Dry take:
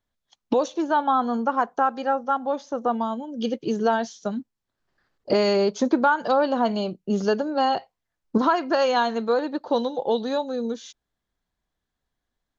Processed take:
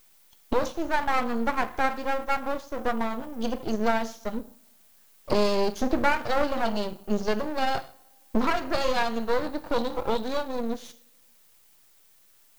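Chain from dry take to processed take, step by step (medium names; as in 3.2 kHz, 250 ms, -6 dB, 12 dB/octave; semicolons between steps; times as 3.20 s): added noise violet -56 dBFS; two-slope reverb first 0.47 s, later 1.7 s, from -24 dB, DRR 8.5 dB; half-wave rectifier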